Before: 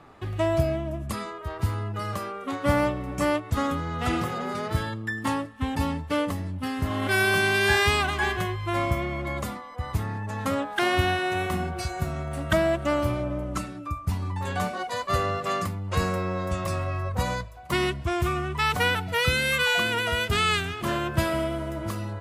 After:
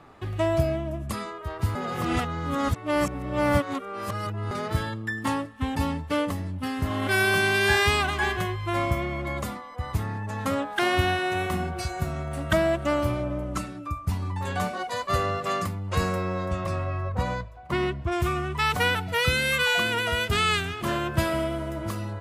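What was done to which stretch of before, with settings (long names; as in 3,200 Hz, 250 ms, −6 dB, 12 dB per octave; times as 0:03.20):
0:01.75–0:04.51: reverse
0:16.45–0:18.11: low-pass filter 3,300 Hz → 1,500 Hz 6 dB per octave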